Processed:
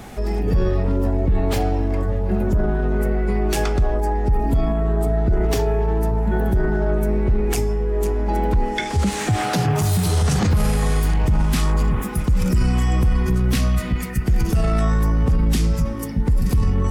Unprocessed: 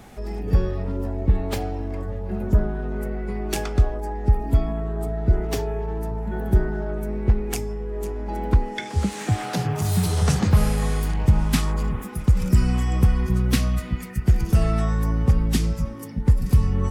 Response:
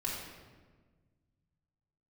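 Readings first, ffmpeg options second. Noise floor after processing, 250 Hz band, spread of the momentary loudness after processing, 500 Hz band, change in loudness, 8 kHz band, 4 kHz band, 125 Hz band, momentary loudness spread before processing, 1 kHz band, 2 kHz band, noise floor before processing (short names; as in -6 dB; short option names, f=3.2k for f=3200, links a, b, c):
-26 dBFS, +3.5 dB, 3 LU, +6.0 dB, +3.0 dB, +3.5 dB, +3.5 dB, +1.5 dB, 9 LU, +5.5 dB, +5.0 dB, -34 dBFS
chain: -filter_complex "[0:a]acontrast=61,alimiter=limit=-13dB:level=0:latency=1:release=16,asplit=2[a][b];[1:a]atrim=start_sample=2205[c];[b][c]afir=irnorm=-1:irlink=0,volume=-23dB[d];[a][d]amix=inputs=2:normalize=0,volume=1dB"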